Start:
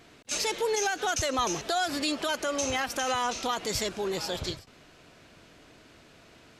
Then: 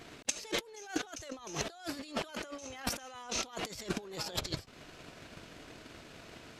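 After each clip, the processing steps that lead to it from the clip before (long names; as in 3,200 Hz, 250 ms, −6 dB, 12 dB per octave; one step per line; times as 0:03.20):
compressor whose output falls as the input rises −39 dBFS, ratio −1
transient designer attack +11 dB, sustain −6 dB
level −5 dB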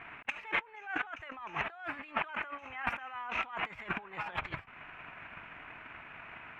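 drawn EQ curve 170 Hz 0 dB, 360 Hz −4 dB, 520 Hz −4 dB, 870 Hz +12 dB, 2,500 Hz +13 dB, 4,600 Hz −24 dB
level −4.5 dB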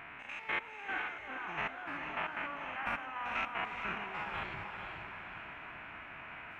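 spectrum averaged block by block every 100 ms
feedback delay with all-pass diffusion 459 ms, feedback 47%, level −5 dB
level +1 dB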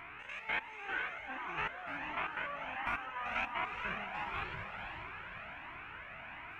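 flanger whose copies keep moving one way rising 1.4 Hz
level +4 dB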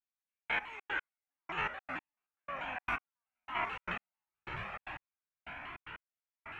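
gate pattern ".....xxx.x" 151 BPM −60 dB
pitch modulation by a square or saw wave saw down 4.6 Hz, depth 160 cents
level +2 dB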